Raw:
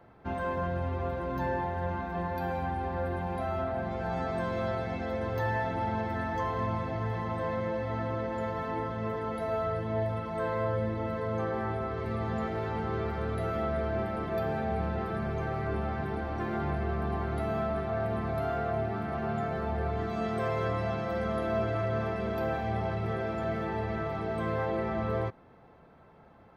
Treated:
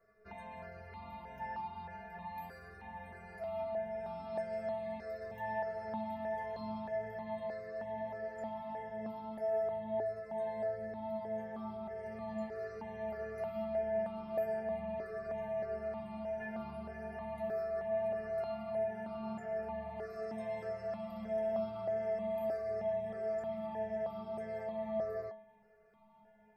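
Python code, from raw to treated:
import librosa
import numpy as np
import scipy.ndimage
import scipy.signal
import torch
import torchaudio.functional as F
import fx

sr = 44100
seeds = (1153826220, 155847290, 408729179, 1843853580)

y = fx.peak_eq(x, sr, hz=4300.0, db=3.0, octaves=1.6)
y = fx.stiff_resonator(y, sr, f0_hz=210.0, decay_s=0.48, stiffness=0.008)
y = fx.phaser_held(y, sr, hz=3.2, low_hz=880.0, high_hz=1800.0)
y = F.gain(torch.from_numpy(y), 8.5).numpy()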